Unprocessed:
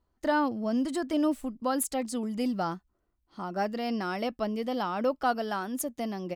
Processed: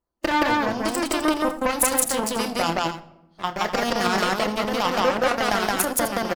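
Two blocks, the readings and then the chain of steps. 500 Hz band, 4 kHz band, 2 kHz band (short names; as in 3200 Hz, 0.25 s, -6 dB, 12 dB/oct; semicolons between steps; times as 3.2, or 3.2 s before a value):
+7.0 dB, +14.5 dB, +12.5 dB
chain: tone controls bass -6 dB, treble +1 dB; LFO notch saw down 3.2 Hz 730–4000 Hz; in parallel at 0 dB: negative-ratio compressor -34 dBFS, ratio -0.5; on the sum: added harmonics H 3 -13 dB, 7 -25 dB, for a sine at -14.5 dBFS; harmonic-percussive split percussive +4 dB; on a send: loudspeakers at several distances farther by 10 m -9 dB, 59 m 0 dB, 88 m -11 dB; on the sum: shoebox room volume 3300 m³, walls furnished, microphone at 0.83 m; gain +8 dB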